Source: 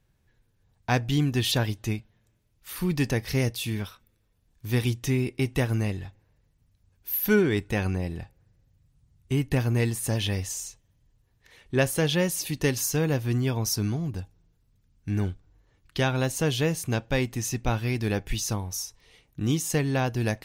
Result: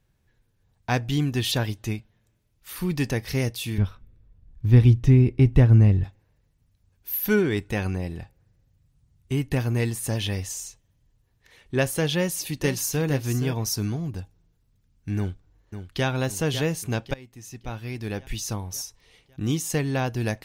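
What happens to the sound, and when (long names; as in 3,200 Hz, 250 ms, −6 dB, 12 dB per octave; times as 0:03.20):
0:03.78–0:06.04: RIAA equalisation playback
0:12.15–0:13.06: delay throw 470 ms, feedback 10%, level −10 dB
0:15.17–0:16.06: delay throw 550 ms, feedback 55%, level −9.5 dB
0:17.14–0:18.76: fade in, from −24 dB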